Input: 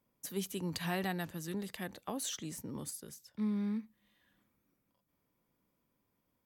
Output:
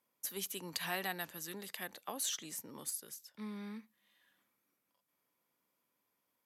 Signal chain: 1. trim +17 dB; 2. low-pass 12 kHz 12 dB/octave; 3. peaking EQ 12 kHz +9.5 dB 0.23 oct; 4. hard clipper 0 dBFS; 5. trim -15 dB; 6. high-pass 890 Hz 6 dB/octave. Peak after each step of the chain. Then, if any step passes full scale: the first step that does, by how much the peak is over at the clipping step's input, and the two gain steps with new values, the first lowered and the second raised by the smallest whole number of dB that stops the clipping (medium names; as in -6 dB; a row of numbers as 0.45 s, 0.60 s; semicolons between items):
-3.5 dBFS, -4.0 dBFS, -3.5 dBFS, -3.5 dBFS, -18.5 dBFS, -22.0 dBFS; nothing clips